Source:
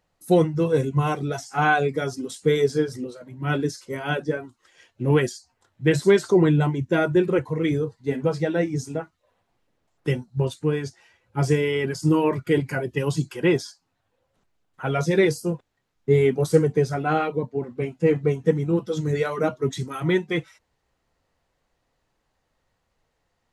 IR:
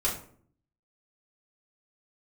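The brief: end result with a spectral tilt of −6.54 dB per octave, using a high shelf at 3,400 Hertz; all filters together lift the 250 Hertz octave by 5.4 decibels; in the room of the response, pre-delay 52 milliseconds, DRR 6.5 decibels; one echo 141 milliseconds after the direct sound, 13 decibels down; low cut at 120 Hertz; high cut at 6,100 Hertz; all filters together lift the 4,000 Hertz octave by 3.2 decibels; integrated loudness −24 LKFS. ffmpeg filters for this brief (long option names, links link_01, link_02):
-filter_complex "[0:a]highpass=120,lowpass=6100,equalizer=frequency=250:width_type=o:gain=9,highshelf=frequency=3400:gain=-4,equalizer=frequency=4000:width_type=o:gain=7.5,aecho=1:1:141:0.224,asplit=2[link_01][link_02];[1:a]atrim=start_sample=2205,adelay=52[link_03];[link_02][link_03]afir=irnorm=-1:irlink=0,volume=-14.5dB[link_04];[link_01][link_04]amix=inputs=2:normalize=0,volume=-5dB"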